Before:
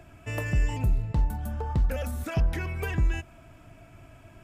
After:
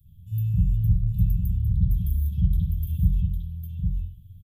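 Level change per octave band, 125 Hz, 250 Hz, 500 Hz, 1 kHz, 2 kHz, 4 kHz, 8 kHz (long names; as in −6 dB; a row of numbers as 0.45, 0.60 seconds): +7.0 dB, +3.5 dB, below −35 dB, below −40 dB, below −30 dB, below −10 dB, below −10 dB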